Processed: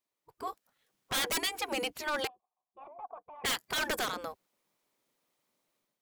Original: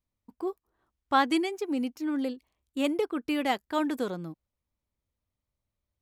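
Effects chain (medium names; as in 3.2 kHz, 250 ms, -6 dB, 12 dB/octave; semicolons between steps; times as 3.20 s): spectral gate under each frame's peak -15 dB weak; level rider gain up to 10 dB; wavefolder -27.5 dBFS; 2.27–3.44 s: cascade formant filter a; trim +2.5 dB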